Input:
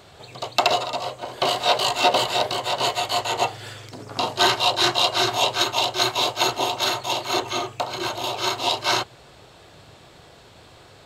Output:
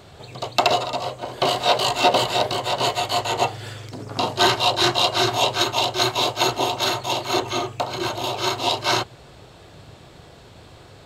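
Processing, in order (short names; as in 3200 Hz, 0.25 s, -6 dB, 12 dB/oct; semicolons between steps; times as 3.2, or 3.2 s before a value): low shelf 380 Hz +6.5 dB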